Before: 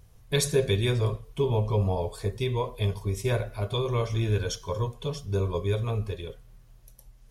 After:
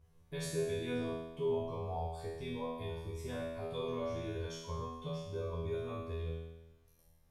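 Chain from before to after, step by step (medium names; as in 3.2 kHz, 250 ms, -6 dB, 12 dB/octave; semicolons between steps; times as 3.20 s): treble shelf 3 kHz -9 dB; peak limiter -21 dBFS, peak gain reduction 8.5 dB; feedback comb 82 Hz, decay 1 s, harmonics all, mix 100%; trim +8 dB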